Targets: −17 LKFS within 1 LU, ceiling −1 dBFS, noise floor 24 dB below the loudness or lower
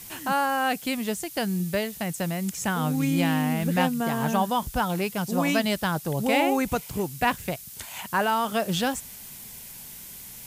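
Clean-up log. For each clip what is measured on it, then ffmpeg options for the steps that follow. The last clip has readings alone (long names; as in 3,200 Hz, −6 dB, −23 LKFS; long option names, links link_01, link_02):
background noise floor −43 dBFS; target noise floor −50 dBFS; integrated loudness −26.0 LKFS; sample peak −8.0 dBFS; target loudness −17.0 LKFS
→ -af "afftdn=noise_reduction=7:noise_floor=-43"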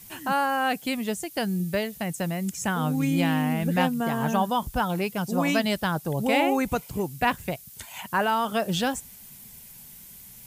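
background noise floor −47 dBFS; target noise floor −50 dBFS
→ -af "afftdn=noise_reduction=6:noise_floor=-47"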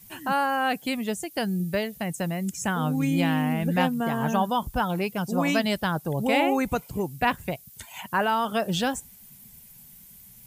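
background noise floor −50 dBFS; integrated loudness −26.0 LKFS; sample peak −8.5 dBFS; target loudness −17.0 LKFS
→ -af "volume=9dB,alimiter=limit=-1dB:level=0:latency=1"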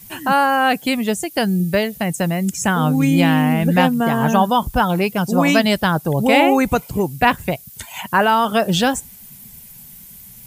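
integrated loudness −17.0 LKFS; sample peak −1.0 dBFS; background noise floor −41 dBFS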